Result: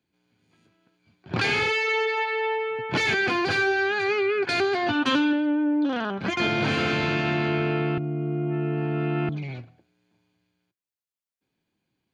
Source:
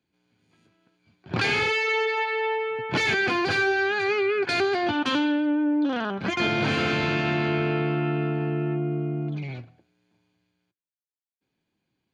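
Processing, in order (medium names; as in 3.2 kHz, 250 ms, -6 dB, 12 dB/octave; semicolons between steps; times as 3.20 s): 4.75–5.33 s: comb 7.5 ms, depth 52%; 7.98–9.29 s: reverse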